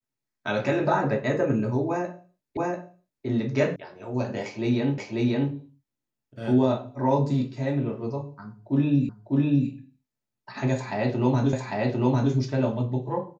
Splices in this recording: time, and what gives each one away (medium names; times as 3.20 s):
2.57 s: repeat of the last 0.69 s
3.76 s: sound stops dead
4.98 s: repeat of the last 0.54 s
9.09 s: repeat of the last 0.6 s
11.53 s: repeat of the last 0.8 s